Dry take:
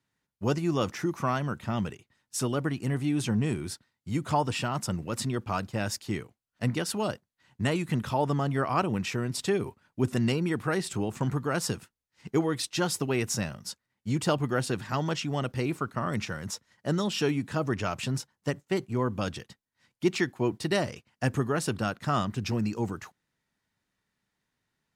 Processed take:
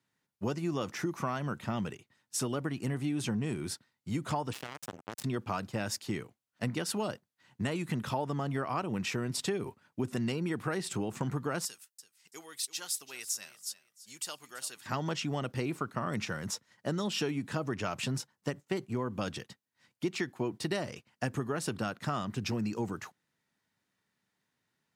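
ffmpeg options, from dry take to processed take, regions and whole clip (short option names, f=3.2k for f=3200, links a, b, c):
-filter_complex "[0:a]asettb=1/sr,asplit=3[a][b][c];[a]atrim=end=4.534[d];[b]atrim=start=4.53:end=5.24,asetpts=PTS-STARTPTS,afade=t=in:d=0.004:c=qsin,afade=t=out:st=0.706:d=0.004:c=qsin,bandreject=f=50:t=h:w=6,bandreject=f=100:t=h:w=6,bandreject=f=150:t=h:w=6,acompressor=threshold=-34dB:ratio=5:attack=3.2:release=140:knee=1:detection=peak,acrusher=bits=4:mix=0:aa=0.5[e];[c]atrim=start=5.236[f];[d][e]acrossfade=d=0.004:c1=hsin:c2=qsin[g];[g][f]acrossfade=d=0.004:c1=qsin:c2=hsin,asettb=1/sr,asplit=3[h][i][j];[h]atrim=end=11.654[k];[i]atrim=start=11.65:end=14.86,asetpts=PTS-STARTPTS,afade=t=in:d=0.004:c=qsin,afade=t=out:st=3.206:d=0.004:c=qsin,aderivative,aecho=1:1:334|668:0.158|0.0365,atrim=end_sample=141561[l];[j]atrim=start=14.856[m];[k][l]acrossfade=d=0.004:c1=hsin:c2=qsin[n];[n][m]acrossfade=d=0.004:c1=qsin:c2=hsin,highpass=110,acompressor=threshold=-29dB:ratio=6"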